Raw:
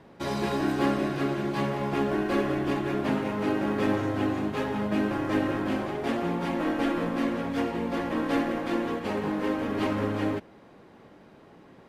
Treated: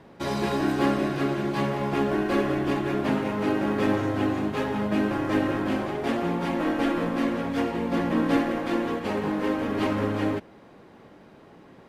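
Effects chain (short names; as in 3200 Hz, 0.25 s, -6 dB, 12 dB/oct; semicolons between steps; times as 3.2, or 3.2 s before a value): 7.91–8.37 bell 180 Hz +7 dB 1.1 oct; gain +2 dB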